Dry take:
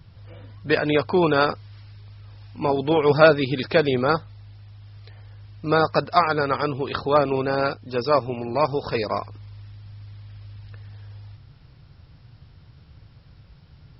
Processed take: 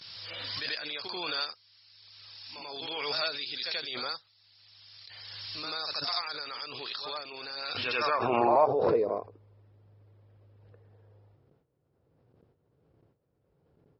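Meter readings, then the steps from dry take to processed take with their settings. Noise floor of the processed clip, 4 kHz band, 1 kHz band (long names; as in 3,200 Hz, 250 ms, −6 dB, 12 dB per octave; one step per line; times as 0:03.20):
−73 dBFS, +0.5 dB, −8.5 dB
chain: noise gate with hold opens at −38 dBFS
band-pass filter sweep 4,800 Hz → 440 Hz, 0:07.55–0:08.92
echo ahead of the sound 87 ms −14.5 dB
background raised ahead of every attack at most 22 dB per second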